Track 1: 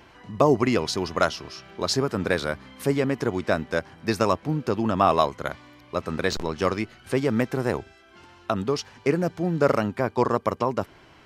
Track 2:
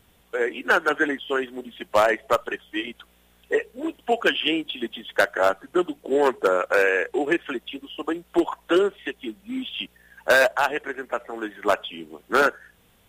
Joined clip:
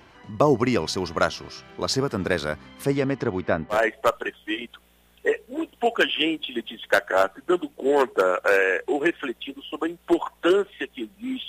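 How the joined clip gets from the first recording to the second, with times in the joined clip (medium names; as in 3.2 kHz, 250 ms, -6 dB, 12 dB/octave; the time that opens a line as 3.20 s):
track 1
2.84–3.81 s: low-pass 9.8 kHz -> 1.5 kHz
3.75 s: go over to track 2 from 2.01 s, crossfade 0.12 s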